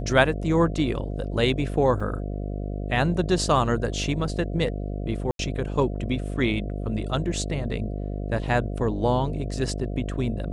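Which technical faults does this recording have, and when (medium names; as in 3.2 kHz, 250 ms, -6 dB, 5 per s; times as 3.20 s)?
buzz 50 Hz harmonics 14 -30 dBFS
2.00 s: dropout 3.9 ms
5.31–5.39 s: dropout 82 ms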